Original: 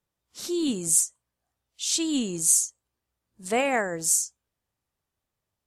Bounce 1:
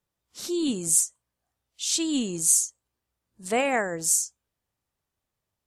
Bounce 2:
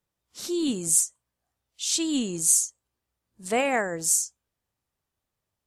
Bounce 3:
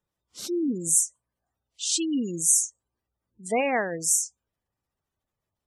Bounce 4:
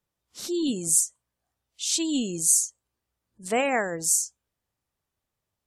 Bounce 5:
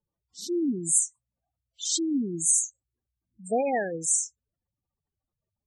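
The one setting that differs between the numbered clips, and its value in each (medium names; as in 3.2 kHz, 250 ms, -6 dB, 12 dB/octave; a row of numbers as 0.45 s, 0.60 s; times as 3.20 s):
spectral gate, under each frame's peak: -50 dB, -60 dB, -20 dB, -35 dB, -10 dB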